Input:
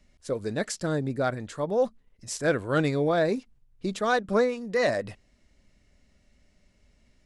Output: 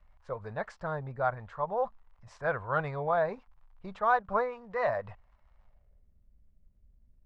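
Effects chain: crackle 120 per s -48 dBFS; amplifier tone stack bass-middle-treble 10-0-10; low-pass sweep 960 Hz -> 300 Hz, 5.56–6.15 s; trim +7.5 dB

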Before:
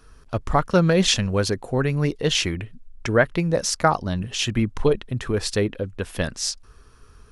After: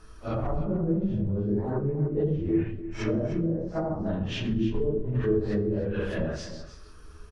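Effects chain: phase randomisation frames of 200 ms; low-pass that closes with the level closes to 330 Hz, closed at -18.5 dBFS; peak limiter -21.5 dBFS, peak gain reduction 11.5 dB; delay 303 ms -12.5 dB; on a send at -7.5 dB: reverberation RT60 0.60 s, pre-delay 3 ms

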